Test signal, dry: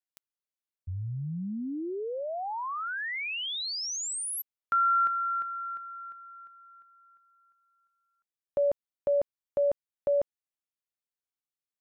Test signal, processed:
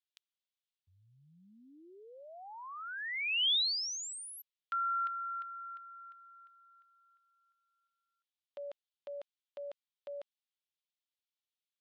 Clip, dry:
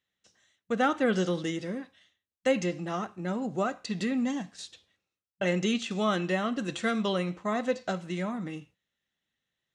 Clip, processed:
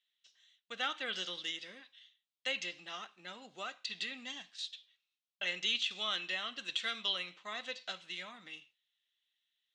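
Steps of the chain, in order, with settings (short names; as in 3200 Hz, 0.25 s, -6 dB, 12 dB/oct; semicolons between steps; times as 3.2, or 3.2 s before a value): band-pass 3400 Hz, Q 2.5; gain +5.5 dB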